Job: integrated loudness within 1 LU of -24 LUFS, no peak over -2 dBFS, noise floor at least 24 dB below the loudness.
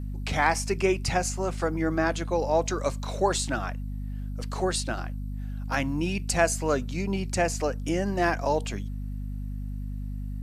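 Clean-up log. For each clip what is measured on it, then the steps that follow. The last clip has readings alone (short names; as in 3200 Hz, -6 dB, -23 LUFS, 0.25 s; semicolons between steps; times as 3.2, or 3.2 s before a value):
hum 50 Hz; harmonics up to 250 Hz; hum level -31 dBFS; loudness -28.5 LUFS; peak -7.5 dBFS; loudness target -24.0 LUFS
-> notches 50/100/150/200/250 Hz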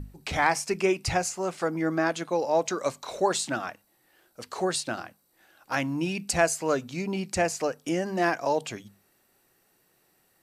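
hum none; loudness -28.0 LUFS; peak -8.5 dBFS; loudness target -24.0 LUFS
-> gain +4 dB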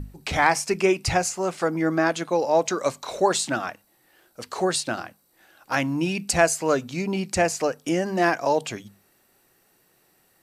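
loudness -24.0 LUFS; peak -4.5 dBFS; noise floor -64 dBFS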